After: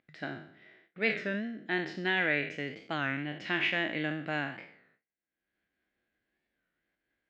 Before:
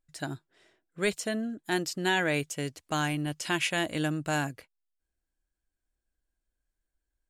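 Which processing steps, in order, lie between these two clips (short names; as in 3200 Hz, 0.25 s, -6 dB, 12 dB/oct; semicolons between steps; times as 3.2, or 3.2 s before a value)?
spectral trails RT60 0.60 s; gate with hold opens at -59 dBFS; upward compressor, threshold -41 dBFS; speaker cabinet 170–3500 Hz, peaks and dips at 200 Hz +4 dB, 960 Hz -6 dB, 2000 Hz +9 dB; record warp 33 1/3 rpm, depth 160 cents; gain -4.5 dB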